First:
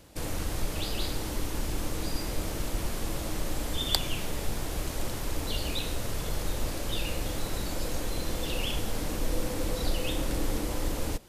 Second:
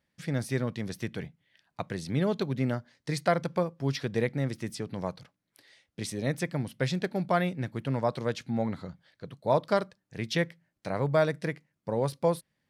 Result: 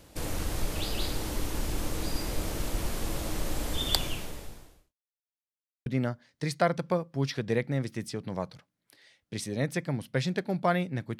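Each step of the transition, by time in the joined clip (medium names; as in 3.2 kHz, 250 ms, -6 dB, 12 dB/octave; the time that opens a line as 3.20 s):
first
4.01–4.95 s: fade out quadratic
4.95–5.86 s: mute
5.86 s: go over to second from 2.52 s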